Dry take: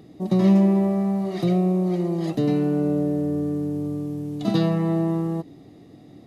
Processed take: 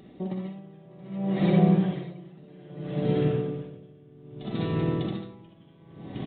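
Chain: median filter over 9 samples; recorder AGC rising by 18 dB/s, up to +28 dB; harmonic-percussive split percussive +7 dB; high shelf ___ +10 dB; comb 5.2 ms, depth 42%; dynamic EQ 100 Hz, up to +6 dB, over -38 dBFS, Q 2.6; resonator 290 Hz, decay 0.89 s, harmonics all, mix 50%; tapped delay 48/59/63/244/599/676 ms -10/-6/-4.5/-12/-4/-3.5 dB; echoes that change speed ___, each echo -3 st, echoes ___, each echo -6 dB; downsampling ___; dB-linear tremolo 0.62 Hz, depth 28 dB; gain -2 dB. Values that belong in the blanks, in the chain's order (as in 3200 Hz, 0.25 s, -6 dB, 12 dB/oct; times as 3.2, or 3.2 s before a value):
2400 Hz, 0.201 s, 2, 8000 Hz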